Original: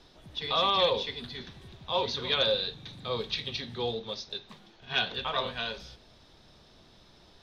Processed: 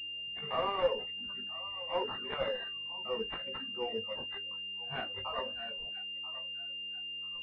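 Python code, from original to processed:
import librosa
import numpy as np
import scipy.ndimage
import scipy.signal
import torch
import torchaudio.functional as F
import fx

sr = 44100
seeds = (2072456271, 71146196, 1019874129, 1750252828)

p1 = fx.hum_notches(x, sr, base_hz=60, count=8)
p2 = p1 + fx.echo_thinned(p1, sr, ms=986, feedback_pct=40, hz=650.0, wet_db=-12.5, dry=0)
p3 = fx.dereverb_blind(p2, sr, rt60_s=1.7)
p4 = fx.dmg_buzz(p3, sr, base_hz=100.0, harmonics=5, level_db=-49.0, tilt_db=-3, odd_only=False)
p5 = fx.chorus_voices(p4, sr, voices=4, hz=0.29, base_ms=17, depth_ms=3.6, mix_pct=40)
p6 = fx.noise_reduce_blind(p5, sr, reduce_db=15)
y = fx.pwm(p6, sr, carrier_hz=2800.0)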